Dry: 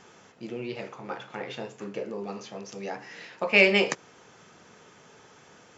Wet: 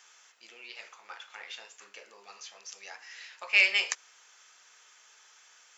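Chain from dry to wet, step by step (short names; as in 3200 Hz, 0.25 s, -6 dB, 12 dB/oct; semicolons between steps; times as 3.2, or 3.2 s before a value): HPF 1400 Hz 12 dB/oct; high shelf 5500 Hz +10 dB; gain -3 dB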